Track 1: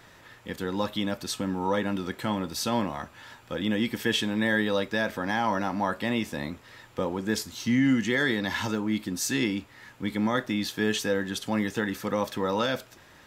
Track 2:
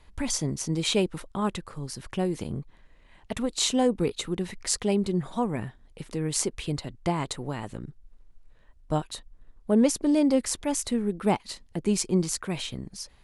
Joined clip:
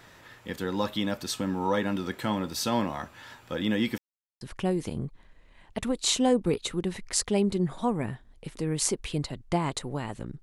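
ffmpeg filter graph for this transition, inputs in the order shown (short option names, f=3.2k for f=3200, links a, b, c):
-filter_complex "[0:a]apad=whole_dur=10.42,atrim=end=10.42,asplit=2[a][b];[a]atrim=end=3.98,asetpts=PTS-STARTPTS,afade=t=out:st=3.976:d=0.004:c=hsin[c];[b]atrim=start=3.98:end=4.41,asetpts=PTS-STARTPTS,volume=0[d];[1:a]atrim=start=1.95:end=7.96,asetpts=PTS-STARTPTS,afade=t=in:d=0.004:c=hsin[e];[c][d][e]concat=n=3:v=0:a=1"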